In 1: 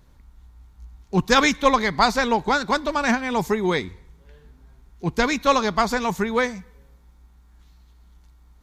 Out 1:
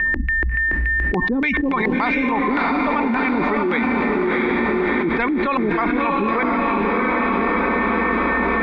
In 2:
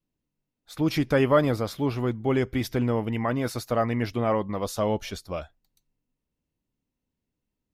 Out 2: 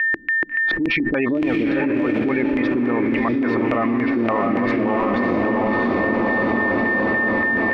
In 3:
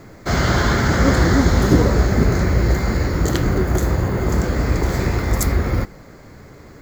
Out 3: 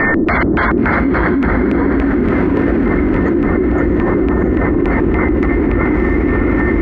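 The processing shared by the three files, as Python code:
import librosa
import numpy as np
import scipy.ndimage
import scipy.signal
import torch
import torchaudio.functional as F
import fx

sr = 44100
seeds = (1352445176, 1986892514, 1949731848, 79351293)

p1 = fx.spec_gate(x, sr, threshold_db=-25, keep='strong')
p2 = fx.graphic_eq(p1, sr, hz=(125, 250, 1000, 4000, 8000), db=(-9, 6, 6, 3, -10))
p3 = p2 + 10.0 ** (-43.0 / 20.0) * np.sin(2.0 * np.pi * 1800.0 * np.arange(len(p2)) / sr)
p4 = fx.filter_lfo_lowpass(p3, sr, shape='square', hz=3.5, low_hz=330.0, high_hz=2400.0, q=3.8)
p5 = p4 + fx.echo_diffused(p4, sr, ms=670, feedback_pct=55, wet_db=-3.5, dry=0)
p6 = fx.env_flatten(p5, sr, amount_pct=100)
y = p6 * librosa.db_to_amplitude(-12.0)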